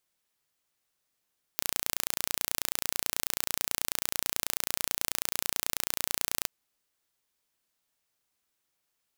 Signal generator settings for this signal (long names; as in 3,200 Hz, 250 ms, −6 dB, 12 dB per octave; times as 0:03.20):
impulse train 29.2 per second, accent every 0, −1.5 dBFS 4.88 s